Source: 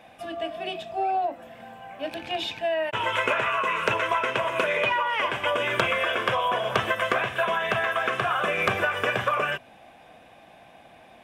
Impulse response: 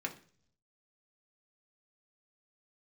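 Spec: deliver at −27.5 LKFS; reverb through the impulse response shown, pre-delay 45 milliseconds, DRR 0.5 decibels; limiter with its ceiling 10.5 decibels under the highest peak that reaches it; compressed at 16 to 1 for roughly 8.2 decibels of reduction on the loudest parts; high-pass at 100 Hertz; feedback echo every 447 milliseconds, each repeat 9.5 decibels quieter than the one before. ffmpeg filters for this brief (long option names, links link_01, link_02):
-filter_complex "[0:a]highpass=100,acompressor=threshold=-27dB:ratio=16,alimiter=level_in=0.5dB:limit=-24dB:level=0:latency=1,volume=-0.5dB,aecho=1:1:447|894|1341|1788:0.335|0.111|0.0365|0.012,asplit=2[link_01][link_02];[1:a]atrim=start_sample=2205,adelay=45[link_03];[link_02][link_03]afir=irnorm=-1:irlink=0,volume=-2.5dB[link_04];[link_01][link_04]amix=inputs=2:normalize=0,volume=3.5dB"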